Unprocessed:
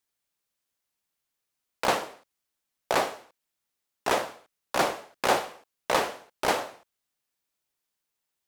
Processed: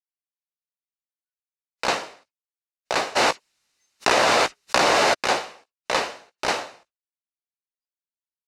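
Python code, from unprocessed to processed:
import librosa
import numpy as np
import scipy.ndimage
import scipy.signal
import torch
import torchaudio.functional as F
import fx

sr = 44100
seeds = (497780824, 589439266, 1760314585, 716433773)

y = scipy.signal.sosfilt(scipy.signal.butter(2, 5300.0, 'lowpass', fs=sr, output='sos'), x)
y = fx.high_shelf(y, sr, hz=2400.0, db=11.0)
y = fx.notch(y, sr, hz=3300.0, q=10.0)
y = fx.doubler(y, sr, ms=17.0, db=-12)
y = fx.noise_reduce_blind(y, sr, reduce_db=29)
y = fx.env_flatten(y, sr, amount_pct=100, at=(3.15, 5.13), fade=0.02)
y = y * 10.0 ** (-1.0 / 20.0)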